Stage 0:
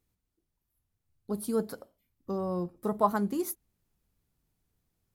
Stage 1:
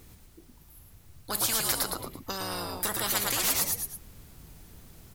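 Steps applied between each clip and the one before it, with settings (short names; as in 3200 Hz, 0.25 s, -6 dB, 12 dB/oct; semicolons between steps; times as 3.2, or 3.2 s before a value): frequency-shifting echo 0.111 s, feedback 36%, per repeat -88 Hz, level -5 dB; spectral compressor 10:1; gain +3 dB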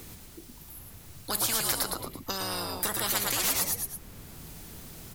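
three-band squash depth 40%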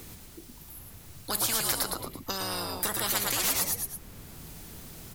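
nothing audible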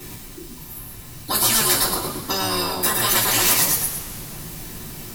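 reverb, pre-delay 3 ms, DRR -10 dB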